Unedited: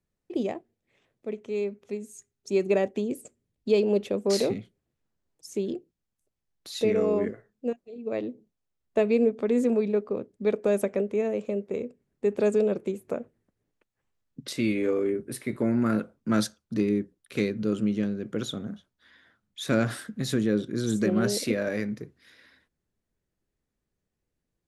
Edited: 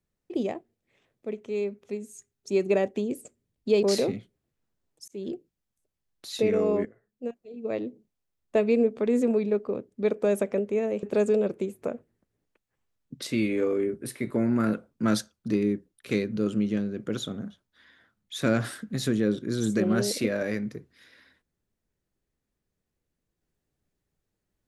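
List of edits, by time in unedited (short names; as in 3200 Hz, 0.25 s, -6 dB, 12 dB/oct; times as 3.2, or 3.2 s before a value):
3.83–4.25 cut
5.5–5.76 fade in
7.27–8.03 fade in, from -16.5 dB
11.45–12.29 cut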